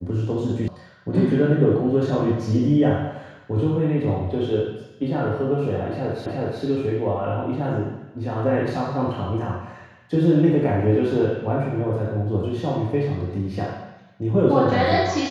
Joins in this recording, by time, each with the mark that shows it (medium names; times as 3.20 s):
0.68 s: sound stops dead
6.26 s: repeat of the last 0.37 s